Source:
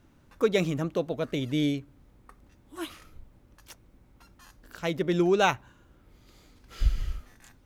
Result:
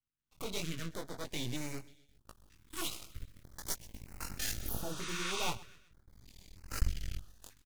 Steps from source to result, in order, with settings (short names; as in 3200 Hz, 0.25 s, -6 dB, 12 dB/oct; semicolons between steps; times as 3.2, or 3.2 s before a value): recorder AGC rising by 9.4 dB/s; in parallel at -11.5 dB: fuzz box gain 36 dB, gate -36 dBFS; on the sum: passive tone stack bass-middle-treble 5-5-5; gate with hold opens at -57 dBFS; chorus 1.3 Hz, delay 17 ms, depth 5.7 ms; 5.46–6.83 low shelf 470 Hz +7.5 dB; half-wave rectifier; 4.63–5.43 spectral repair 930–10000 Hz both; on a send: feedback echo 0.127 s, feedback 44%, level -20 dB; on the sum: stepped notch 3.2 Hz 660–3400 Hz; gain +6 dB